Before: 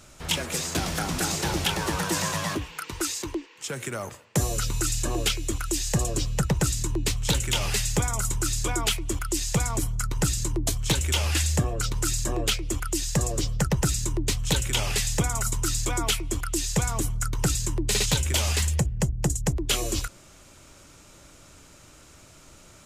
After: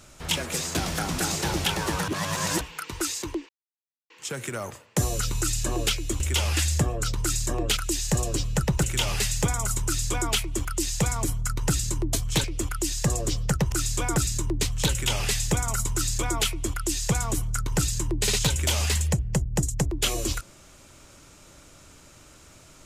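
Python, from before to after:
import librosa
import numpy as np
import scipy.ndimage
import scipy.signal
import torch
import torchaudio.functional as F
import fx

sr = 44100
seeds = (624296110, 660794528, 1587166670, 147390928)

y = fx.edit(x, sr, fx.reverse_span(start_s=2.08, length_s=0.53),
    fx.insert_silence(at_s=3.49, length_s=0.61),
    fx.cut(start_s=6.65, length_s=0.72),
    fx.duplicate(start_s=8.39, length_s=0.44, to_s=13.83),
    fx.move(start_s=10.98, length_s=1.57, to_s=5.59), tone=tone)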